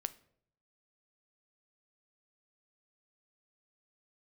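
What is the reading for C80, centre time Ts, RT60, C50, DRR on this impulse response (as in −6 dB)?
22.5 dB, 3 ms, 0.65 s, 18.0 dB, 12.5 dB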